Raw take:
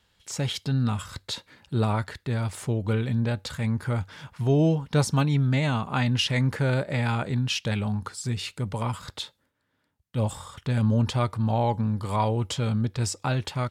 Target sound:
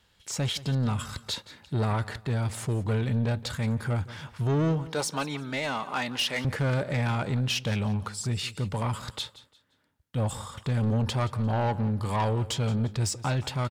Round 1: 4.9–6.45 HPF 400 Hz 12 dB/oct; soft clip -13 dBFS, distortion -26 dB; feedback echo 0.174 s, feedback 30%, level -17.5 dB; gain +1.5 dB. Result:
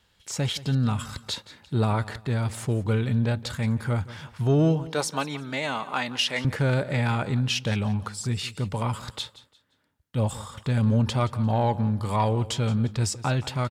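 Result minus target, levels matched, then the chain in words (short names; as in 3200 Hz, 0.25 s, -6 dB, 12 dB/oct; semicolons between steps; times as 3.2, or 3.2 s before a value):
soft clip: distortion -14 dB
4.9–6.45 HPF 400 Hz 12 dB/oct; soft clip -23 dBFS, distortion -13 dB; feedback echo 0.174 s, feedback 30%, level -17.5 dB; gain +1.5 dB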